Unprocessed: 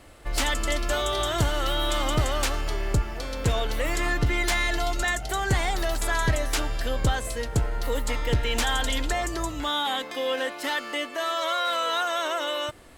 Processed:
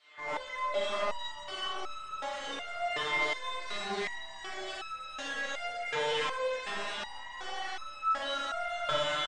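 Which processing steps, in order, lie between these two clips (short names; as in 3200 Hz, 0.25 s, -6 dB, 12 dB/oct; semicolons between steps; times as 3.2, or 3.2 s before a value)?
comb 4.7 ms, depth 38%; dynamic EQ 110 Hz, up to +4 dB, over -42 dBFS, Q 5.4; LFO band-pass saw down 2 Hz 480–4200 Hz; in parallel at -8.5 dB: companded quantiser 2-bit; on the sum: tempo 1.4×; thinning echo 0.452 s, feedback 74%, high-pass 970 Hz, level -3.5 dB; overdrive pedal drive 24 dB, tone 1500 Hz, clips at -17 dBFS; brick-wall FIR low-pass 9200 Hz; Schroeder reverb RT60 1.1 s, combs from 29 ms, DRR -5.5 dB; stepped resonator 2.7 Hz 150–1300 Hz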